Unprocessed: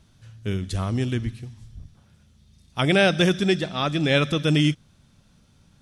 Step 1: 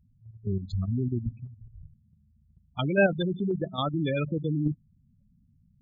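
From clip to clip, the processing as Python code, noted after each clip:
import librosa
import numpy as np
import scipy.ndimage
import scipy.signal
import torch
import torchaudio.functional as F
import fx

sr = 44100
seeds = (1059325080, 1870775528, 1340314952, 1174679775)

y = fx.spec_gate(x, sr, threshold_db=-10, keep='strong')
y = fx.level_steps(y, sr, step_db=9)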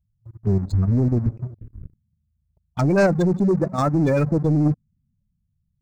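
y = fx.leveller(x, sr, passes=3)
y = fx.env_phaser(y, sr, low_hz=260.0, high_hz=3200.0, full_db=-24.5)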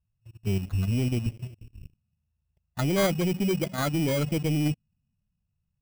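y = fx.sample_hold(x, sr, seeds[0], rate_hz=2700.0, jitter_pct=0)
y = y * 10.0 ** (-7.0 / 20.0)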